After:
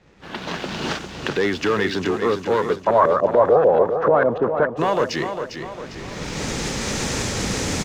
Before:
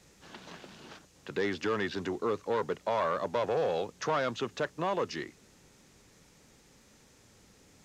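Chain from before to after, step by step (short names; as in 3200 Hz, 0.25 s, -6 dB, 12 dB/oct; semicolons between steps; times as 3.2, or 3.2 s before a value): recorder AGC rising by 19 dB/s; low-pass opened by the level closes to 2500 Hz, open at -28 dBFS; sample leveller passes 1; 2.76–4.77 LFO low-pass saw up 6.8 Hz 390–1600 Hz; feedback echo 0.402 s, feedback 47%, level -8 dB; gain +7 dB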